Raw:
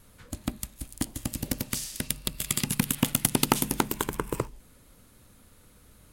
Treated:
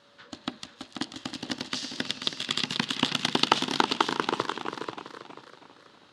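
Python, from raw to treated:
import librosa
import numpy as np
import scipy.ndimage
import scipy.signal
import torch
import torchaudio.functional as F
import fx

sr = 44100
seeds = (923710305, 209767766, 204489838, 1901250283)

y = fx.cabinet(x, sr, low_hz=200.0, low_slope=12, high_hz=4200.0, hz=(200.0, 550.0, 2300.0), db=(-3, -5, -9))
y = y + 10.0 ** (-66.0 / 20.0) * np.sin(2.0 * np.pi * 570.0 * np.arange(len(y)) / sr)
y = fx.tilt_eq(y, sr, slope=2.5)
y = fx.echo_feedback(y, sr, ms=487, feedback_pct=24, wet_db=-6.5)
y = fx.echo_warbled(y, sr, ms=325, feedback_pct=48, rate_hz=2.8, cents=146, wet_db=-10.5)
y = y * 10.0 ** (4.5 / 20.0)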